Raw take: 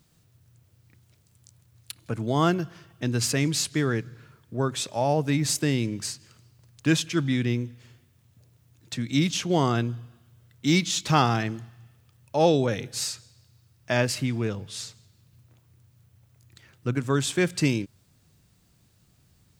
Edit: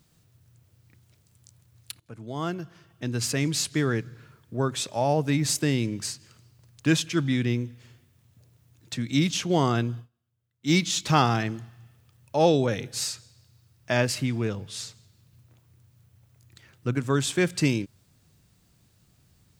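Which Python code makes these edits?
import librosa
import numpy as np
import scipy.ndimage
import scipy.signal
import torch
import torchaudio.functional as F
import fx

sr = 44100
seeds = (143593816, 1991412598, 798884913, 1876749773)

y = fx.edit(x, sr, fx.fade_in_from(start_s=2.0, length_s=1.75, floor_db=-15.5),
    fx.fade_down_up(start_s=9.99, length_s=0.72, db=-22.5, fade_s=0.12, curve='qua'), tone=tone)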